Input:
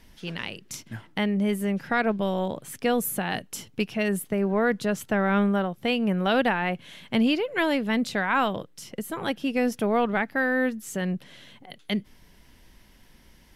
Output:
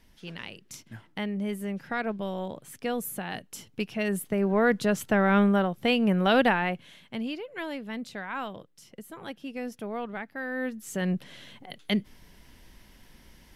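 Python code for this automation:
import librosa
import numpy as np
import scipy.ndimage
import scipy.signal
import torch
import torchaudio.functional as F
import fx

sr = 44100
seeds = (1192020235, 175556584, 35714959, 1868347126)

y = fx.gain(x, sr, db=fx.line((3.44, -6.5), (4.72, 1.0), (6.54, 1.0), (7.16, -11.0), (10.38, -11.0), (11.12, 1.0)))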